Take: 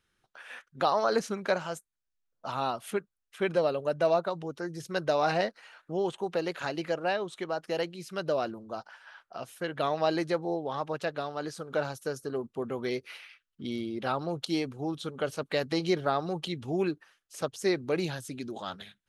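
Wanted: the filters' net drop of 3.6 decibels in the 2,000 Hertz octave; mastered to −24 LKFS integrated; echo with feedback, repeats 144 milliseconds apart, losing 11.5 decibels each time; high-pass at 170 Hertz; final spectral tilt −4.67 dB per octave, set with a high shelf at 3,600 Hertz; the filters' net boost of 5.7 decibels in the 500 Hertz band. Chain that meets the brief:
high-pass filter 170 Hz
parametric band 500 Hz +7.5 dB
parametric band 2,000 Hz −7.5 dB
high-shelf EQ 3,600 Hz +7 dB
repeating echo 144 ms, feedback 27%, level −11.5 dB
level +3 dB

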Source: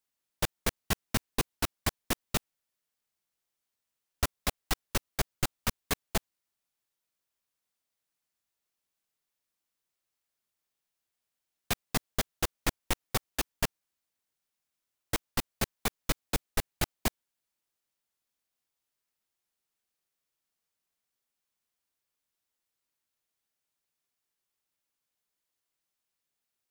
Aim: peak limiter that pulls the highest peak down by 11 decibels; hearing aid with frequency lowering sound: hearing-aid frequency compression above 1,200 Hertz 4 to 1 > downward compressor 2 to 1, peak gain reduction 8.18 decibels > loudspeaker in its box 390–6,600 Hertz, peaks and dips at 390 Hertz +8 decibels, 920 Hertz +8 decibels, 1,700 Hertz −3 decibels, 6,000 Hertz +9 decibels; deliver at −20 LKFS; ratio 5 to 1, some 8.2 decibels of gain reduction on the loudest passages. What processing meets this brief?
downward compressor 5 to 1, threshold −33 dBFS
brickwall limiter −27.5 dBFS
hearing-aid frequency compression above 1,200 Hz 4 to 1
downward compressor 2 to 1, threshold −47 dBFS
loudspeaker in its box 390–6,600 Hz, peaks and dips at 390 Hz +8 dB, 920 Hz +8 dB, 1,700 Hz −3 dB, 6,000 Hz +9 dB
level +29 dB

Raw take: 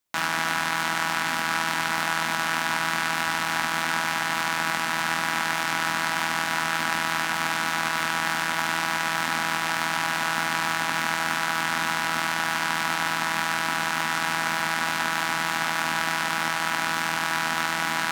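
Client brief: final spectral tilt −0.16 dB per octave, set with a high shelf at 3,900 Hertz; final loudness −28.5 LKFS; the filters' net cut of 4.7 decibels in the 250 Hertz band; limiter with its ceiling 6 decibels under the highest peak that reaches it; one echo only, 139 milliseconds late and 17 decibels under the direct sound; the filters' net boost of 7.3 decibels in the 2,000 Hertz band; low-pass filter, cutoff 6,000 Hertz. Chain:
low-pass filter 6,000 Hz
parametric band 250 Hz −7 dB
parametric band 2,000 Hz +8 dB
high-shelf EQ 3,900 Hz +7.5 dB
brickwall limiter −8.5 dBFS
single-tap delay 139 ms −17 dB
level −7 dB

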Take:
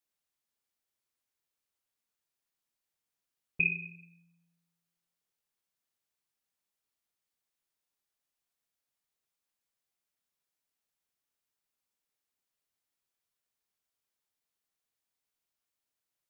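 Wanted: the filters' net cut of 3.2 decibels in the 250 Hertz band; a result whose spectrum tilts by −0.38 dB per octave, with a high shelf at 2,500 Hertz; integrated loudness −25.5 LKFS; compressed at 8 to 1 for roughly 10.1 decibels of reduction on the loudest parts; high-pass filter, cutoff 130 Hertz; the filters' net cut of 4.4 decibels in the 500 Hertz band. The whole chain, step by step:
high-pass filter 130 Hz
parametric band 250 Hz −3.5 dB
parametric band 500 Hz −4.5 dB
high-shelf EQ 2,500 Hz −4.5 dB
downward compressor 8 to 1, threshold −38 dBFS
level +20 dB

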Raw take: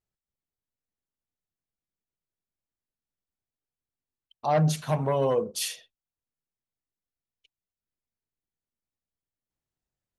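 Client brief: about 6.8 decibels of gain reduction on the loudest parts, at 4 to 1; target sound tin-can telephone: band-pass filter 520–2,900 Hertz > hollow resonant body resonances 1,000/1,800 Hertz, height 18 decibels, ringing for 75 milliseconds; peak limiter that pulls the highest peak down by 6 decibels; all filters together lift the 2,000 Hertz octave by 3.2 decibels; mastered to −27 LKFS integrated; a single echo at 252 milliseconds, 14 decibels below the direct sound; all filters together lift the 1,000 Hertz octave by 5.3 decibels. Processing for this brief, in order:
parametric band 1,000 Hz +7.5 dB
parametric band 2,000 Hz +3 dB
downward compressor 4 to 1, threshold −24 dBFS
brickwall limiter −21.5 dBFS
band-pass filter 520–2,900 Hz
single-tap delay 252 ms −14 dB
hollow resonant body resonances 1,000/1,800 Hz, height 18 dB, ringing for 75 ms

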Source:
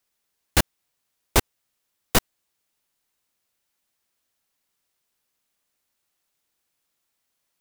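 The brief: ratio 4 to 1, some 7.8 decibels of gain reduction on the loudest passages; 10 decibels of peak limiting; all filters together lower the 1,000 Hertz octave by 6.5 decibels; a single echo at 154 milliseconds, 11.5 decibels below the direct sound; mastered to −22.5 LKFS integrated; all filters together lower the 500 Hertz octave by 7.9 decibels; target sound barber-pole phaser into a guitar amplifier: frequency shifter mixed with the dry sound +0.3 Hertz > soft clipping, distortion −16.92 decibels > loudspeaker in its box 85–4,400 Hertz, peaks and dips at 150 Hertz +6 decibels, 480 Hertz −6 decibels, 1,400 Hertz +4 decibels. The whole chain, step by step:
parametric band 500 Hz −5.5 dB
parametric band 1,000 Hz −8 dB
downward compressor 4 to 1, threshold −23 dBFS
brickwall limiter −17.5 dBFS
single-tap delay 154 ms −11.5 dB
frequency shifter mixed with the dry sound +0.3 Hz
soft clipping −25.5 dBFS
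loudspeaker in its box 85–4,400 Hz, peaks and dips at 150 Hz +6 dB, 480 Hz −6 dB, 1,400 Hz +4 dB
level +23.5 dB

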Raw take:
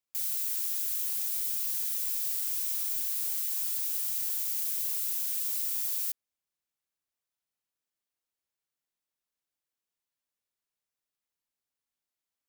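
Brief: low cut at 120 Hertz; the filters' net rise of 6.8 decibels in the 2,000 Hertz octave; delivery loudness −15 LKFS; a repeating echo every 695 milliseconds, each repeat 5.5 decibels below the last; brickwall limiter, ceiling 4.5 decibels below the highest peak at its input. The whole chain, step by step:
high-pass filter 120 Hz
parametric band 2,000 Hz +8.5 dB
brickwall limiter −22 dBFS
repeating echo 695 ms, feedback 53%, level −5.5 dB
level +13.5 dB

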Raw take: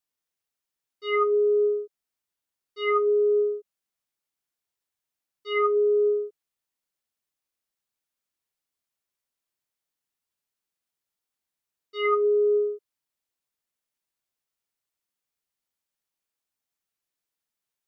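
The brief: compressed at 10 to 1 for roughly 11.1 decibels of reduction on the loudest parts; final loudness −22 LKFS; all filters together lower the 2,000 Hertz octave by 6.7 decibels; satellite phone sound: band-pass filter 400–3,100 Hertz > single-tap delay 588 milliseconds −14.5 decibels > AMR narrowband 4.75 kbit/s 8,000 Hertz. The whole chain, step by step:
parametric band 2,000 Hz −6 dB
downward compressor 10 to 1, threshold −31 dBFS
band-pass filter 400–3,100 Hz
single-tap delay 588 ms −14.5 dB
level +16 dB
AMR narrowband 4.75 kbit/s 8,000 Hz

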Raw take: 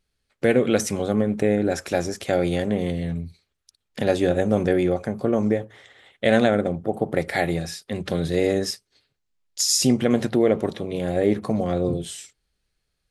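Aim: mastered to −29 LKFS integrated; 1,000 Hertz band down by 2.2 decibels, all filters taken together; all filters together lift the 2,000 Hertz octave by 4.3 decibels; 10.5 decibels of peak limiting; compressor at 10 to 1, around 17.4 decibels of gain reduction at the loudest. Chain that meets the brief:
parametric band 1,000 Hz −5 dB
parametric band 2,000 Hz +6.5 dB
downward compressor 10 to 1, threshold −32 dBFS
level +9.5 dB
brickwall limiter −16 dBFS

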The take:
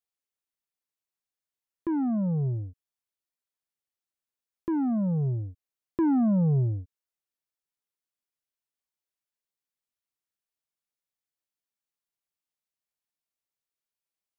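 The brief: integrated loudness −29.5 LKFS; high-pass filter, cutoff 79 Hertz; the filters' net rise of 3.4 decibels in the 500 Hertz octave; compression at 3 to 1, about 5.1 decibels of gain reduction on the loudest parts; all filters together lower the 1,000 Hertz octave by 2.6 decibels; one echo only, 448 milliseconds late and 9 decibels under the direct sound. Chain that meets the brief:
high-pass filter 79 Hz
parametric band 500 Hz +6.5 dB
parametric band 1,000 Hz −6.5 dB
downward compressor 3 to 1, threshold −26 dBFS
single-tap delay 448 ms −9 dB
level +1 dB

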